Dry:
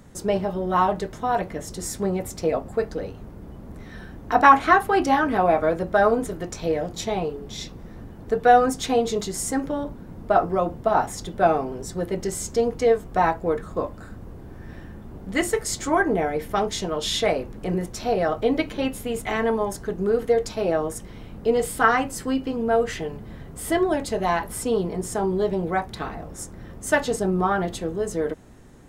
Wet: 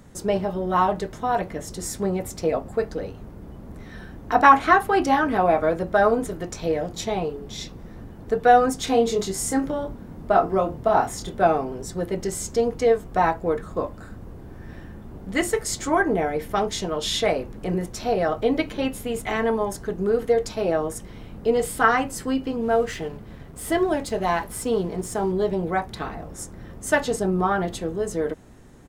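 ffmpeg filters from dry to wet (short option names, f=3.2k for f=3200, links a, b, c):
-filter_complex "[0:a]asplit=3[a][b][c];[a]afade=t=out:st=8.86:d=0.02[d];[b]asplit=2[e][f];[f]adelay=26,volume=-6dB[g];[e][g]amix=inputs=2:normalize=0,afade=t=in:st=8.86:d=0.02,afade=t=out:st=11.42:d=0.02[h];[c]afade=t=in:st=11.42:d=0.02[i];[d][h][i]amix=inputs=3:normalize=0,asettb=1/sr,asplit=3[j][k][l];[j]atrim=end=22.624[m];[k]atrim=start=22.62:end=25.32,asetpts=PTS-STARTPTS,afade=t=in:d=0.004:c=qsin,afade=t=out:st=2.696:d=0.004:c=qsin,aeval=exprs='sgn(val(0))*max(abs(val(0))-0.00355,0)':c=same[n];[l]atrim=start=25.316[o];[m][n]acrossfade=d=0.004:c1=hsin:c2=qsin[p];[p][o]acrossfade=d=0.004:c1=qsin:c2=hsin"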